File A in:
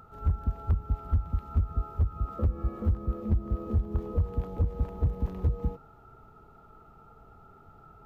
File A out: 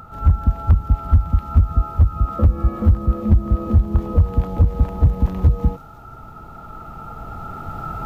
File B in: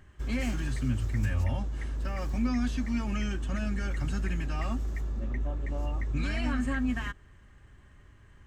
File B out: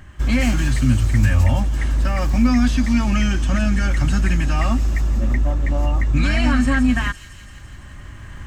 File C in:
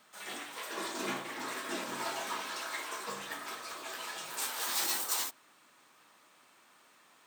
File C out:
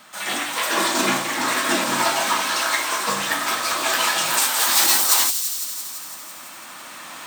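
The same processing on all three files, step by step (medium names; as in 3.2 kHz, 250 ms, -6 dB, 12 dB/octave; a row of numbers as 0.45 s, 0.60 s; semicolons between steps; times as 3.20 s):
recorder AGC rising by 5.6 dB/s; peaking EQ 420 Hz -11 dB 0.28 oct; on a send: feedback echo behind a high-pass 168 ms, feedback 71%, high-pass 4.6 kHz, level -6 dB; on the sum: normalise loudness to -19 LUFS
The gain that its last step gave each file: +12.5 dB, +13.0 dB, +15.5 dB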